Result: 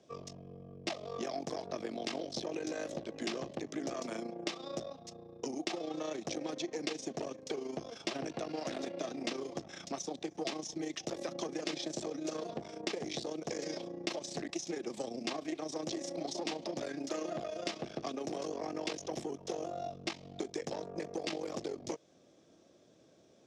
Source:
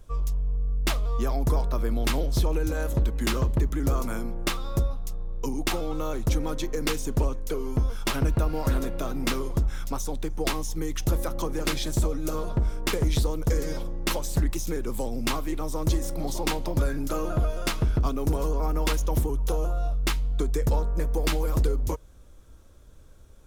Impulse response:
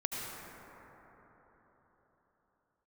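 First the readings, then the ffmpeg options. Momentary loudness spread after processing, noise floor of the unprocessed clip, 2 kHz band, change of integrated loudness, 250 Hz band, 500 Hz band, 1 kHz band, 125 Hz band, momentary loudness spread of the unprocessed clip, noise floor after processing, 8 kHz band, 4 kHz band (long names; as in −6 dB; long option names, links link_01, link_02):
4 LU, −48 dBFS, −10.0 dB, −11.5 dB, −8.5 dB, −6.5 dB, −9.0 dB, −24.0 dB, 5 LU, −63 dBFS, −9.0 dB, −7.0 dB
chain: -filter_complex "[0:a]aeval=exprs='(tanh(11.2*val(0)+0.7)-tanh(0.7))/11.2':channel_layout=same,highpass=frequency=160:width=0.5412,highpass=frequency=160:width=1.3066,equalizer=frequency=340:width_type=q:width=4:gain=5,equalizer=frequency=670:width_type=q:width=4:gain=8,equalizer=frequency=970:width_type=q:width=4:gain=-7,equalizer=frequency=1400:width_type=q:width=4:gain=-10,equalizer=frequency=5400:width_type=q:width=4:gain=4,lowpass=frequency=6400:width=0.5412,lowpass=frequency=6400:width=1.3066,acrossover=split=340|1300[link_01][link_02][link_03];[link_01]acompressor=threshold=-47dB:ratio=4[link_04];[link_02]acompressor=threshold=-40dB:ratio=4[link_05];[link_03]acompressor=threshold=-40dB:ratio=4[link_06];[link_04][link_05][link_06]amix=inputs=3:normalize=0,volume=1dB"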